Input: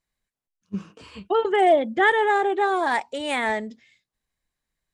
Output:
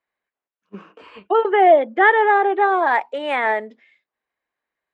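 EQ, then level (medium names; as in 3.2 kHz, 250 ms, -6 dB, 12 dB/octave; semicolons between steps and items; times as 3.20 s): high-pass 45 Hz; three-band isolator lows -23 dB, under 320 Hz, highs -23 dB, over 2.7 kHz; +6.0 dB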